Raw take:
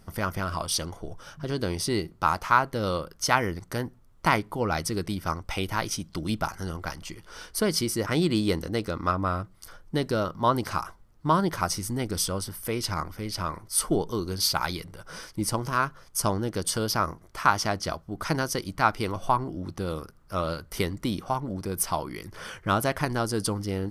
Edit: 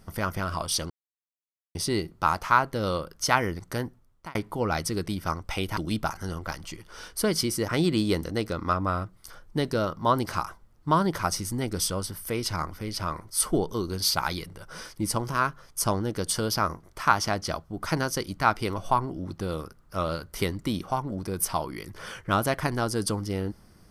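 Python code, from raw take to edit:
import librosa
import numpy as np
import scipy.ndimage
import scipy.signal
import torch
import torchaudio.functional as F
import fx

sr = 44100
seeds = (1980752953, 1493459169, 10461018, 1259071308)

y = fx.edit(x, sr, fx.silence(start_s=0.9, length_s=0.85),
    fx.fade_out_span(start_s=3.85, length_s=0.5),
    fx.cut(start_s=5.77, length_s=0.38), tone=tone)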